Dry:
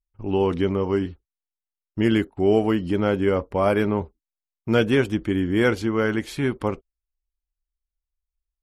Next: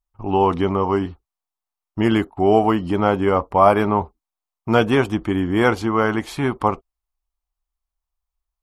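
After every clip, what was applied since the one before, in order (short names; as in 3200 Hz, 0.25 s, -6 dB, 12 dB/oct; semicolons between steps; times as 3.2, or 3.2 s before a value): band shelf 920 Hz +10 dB 1.1 oct; gain +2 dB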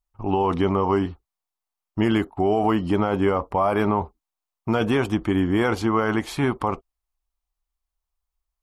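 limiter -11.5 dBFS, peak gain reduction 9.5 dB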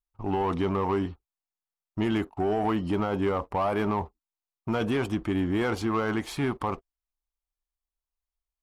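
sample leveller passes 1; gain -7.5 dB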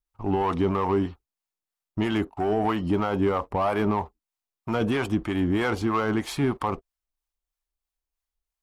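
harmonic tremolo 3.1 Hz, depth 50%, crossover 600 Hz; gain +4.5 dB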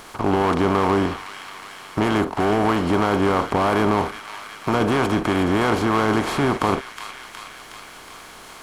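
per-bin compression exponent 0.4; thin delay 0.366 s, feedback 56%, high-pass 1700 Hz, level -7 dB; mismatched tape noise reduction encoder only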